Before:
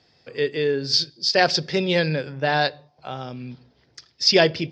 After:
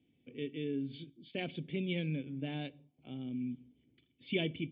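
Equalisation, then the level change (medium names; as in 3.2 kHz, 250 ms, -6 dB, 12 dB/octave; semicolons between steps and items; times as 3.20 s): dynamic bell 310 Hz, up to -5 dB, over -32 dBFS, Q 0.9; cascade formant filter i; +1.0 dB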